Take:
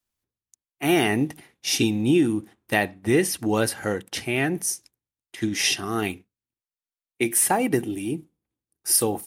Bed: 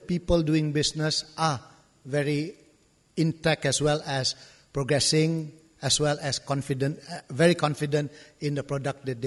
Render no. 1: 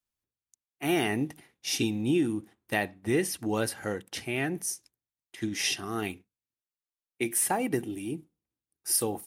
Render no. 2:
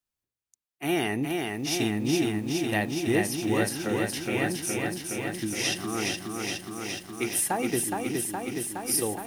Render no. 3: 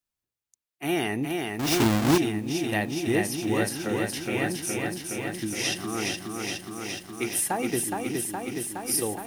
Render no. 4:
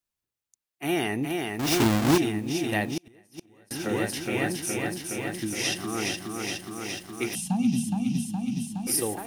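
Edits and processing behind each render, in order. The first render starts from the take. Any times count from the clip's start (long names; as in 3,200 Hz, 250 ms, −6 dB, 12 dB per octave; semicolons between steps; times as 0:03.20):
level −6.5 dB
feedback echo at a low word length 417 ms, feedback 80%, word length 9 bits, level −3.5 dB
0:01.59–0:02.18: each half-wave held at its own peak
0:02.87–0:03.71: gate with flip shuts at −19 dBFS, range −32 dB; 0:07.35–0:08.87: drawn EQ curve 120 Hz 0 dB, 170 Hz +14 dB, 240 Hz +12 dB, 350 Hz −28 dB, 540 Hz −21 dB, 770 Hz −6 dB, 1,900 Hz −23 dB, 2,700 Hz −2 dB, 6,300 Hz −2 dB, 15,000 Hz −16 dB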